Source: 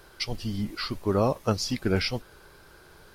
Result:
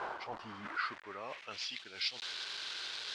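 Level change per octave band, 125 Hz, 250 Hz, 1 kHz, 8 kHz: −30.5, −24.0, −7.0, −11.0 decibels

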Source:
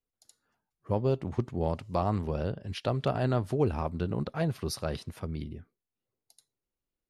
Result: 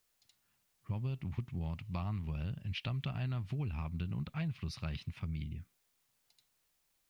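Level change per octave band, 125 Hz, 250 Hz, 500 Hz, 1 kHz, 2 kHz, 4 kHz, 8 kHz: −4.5 dB, −8.5 dB, −21.5 dB, −15.0 dB, −5.0 dB, −4.5 dB, below −10 dB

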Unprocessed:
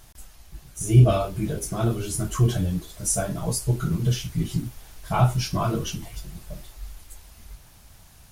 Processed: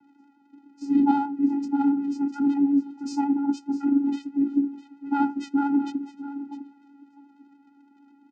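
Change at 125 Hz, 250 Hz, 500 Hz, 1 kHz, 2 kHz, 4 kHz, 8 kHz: below −30 dB, +8.0 dB, −14.0 dB, +2.0 dB, −4.5 dB, below −10 dB, below −20 dB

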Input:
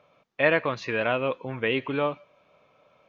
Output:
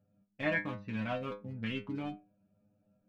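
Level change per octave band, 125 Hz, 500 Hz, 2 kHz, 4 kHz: −5.0, −14.5, −10.5, −11.5 decibels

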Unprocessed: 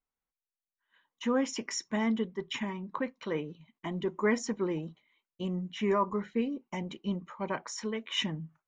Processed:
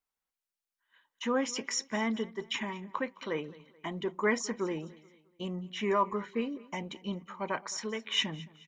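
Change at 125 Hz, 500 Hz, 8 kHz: −4.0, −1.0, +2.5 decibels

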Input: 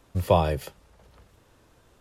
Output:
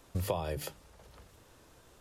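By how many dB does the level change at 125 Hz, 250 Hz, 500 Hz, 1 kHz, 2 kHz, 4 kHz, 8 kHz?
−10.0, −10.5, −12.0, −13.5, −7.5, −7.0, +1.0 decibels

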